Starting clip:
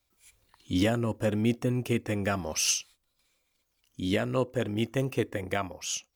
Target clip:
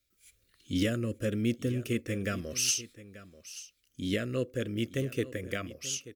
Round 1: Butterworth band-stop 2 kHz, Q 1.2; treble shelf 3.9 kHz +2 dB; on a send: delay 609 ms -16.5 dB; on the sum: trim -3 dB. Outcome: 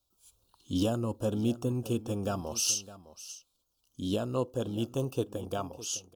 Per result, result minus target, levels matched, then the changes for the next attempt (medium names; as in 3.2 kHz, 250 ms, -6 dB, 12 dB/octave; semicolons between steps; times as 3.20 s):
2 kHz band -11.0 dB; echo 276 ms early
change: Butterworth band-stop 870 Hz, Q 1.2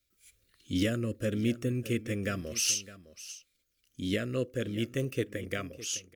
echo 276 ms early
change: delay 885 ms -16.5 dB